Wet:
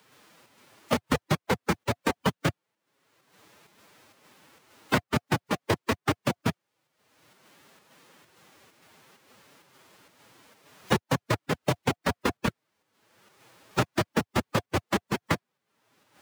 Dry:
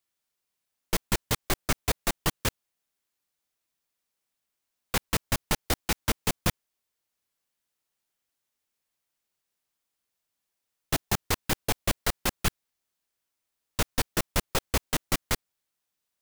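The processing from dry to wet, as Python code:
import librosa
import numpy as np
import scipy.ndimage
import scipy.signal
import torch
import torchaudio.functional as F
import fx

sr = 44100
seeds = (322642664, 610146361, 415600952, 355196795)

p1 = fx.lowpass(x, sr, hz=1300.0, slope=6)
p2 = fx.pitch_keep_formants(p1, sr, semitones=5.0)
p3 = fx.volume_shaper(p2, sr, bpm=131, per_beat=1, depth_db=-14, release_ms=119.0, shape='slow start')
p4 = p2 + (p3 * librosa.db_to_amplitude(2.0))
p5 = scipy.signal.sosfilt(scipy.signal.butter(4, 100.0, 'highpass', fs=sr, output='sos'), p4)
p6 = fx.notch(p5, sr, hz=710.0, q=15.0)
y = fx.band_squash(p6, sr, depth_pct=100)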